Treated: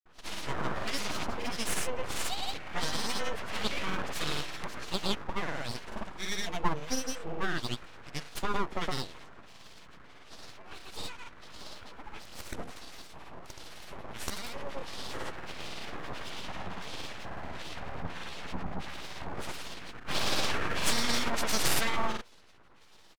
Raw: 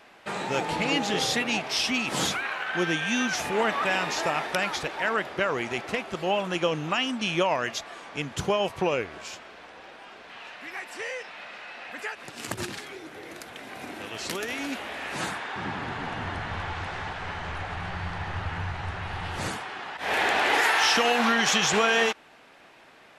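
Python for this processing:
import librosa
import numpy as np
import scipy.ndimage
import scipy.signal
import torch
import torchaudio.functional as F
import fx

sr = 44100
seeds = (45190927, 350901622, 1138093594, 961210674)

y = fx.harmonic_tremolo(x, sr, hz=1.5, depth_pct=100, crossover_hz=1000.0)
y = fx.hum_notches(y, sr, base_hz=60, count=4)
y = np.abs(y)
y = fx.granulator(y, sr, seeds[0], grain_ms=110.0, per_s=18.0, spray_ms=100.0, spread_st=0)
y = F.gain(torch.from_numpy(y), 2.5).numpy()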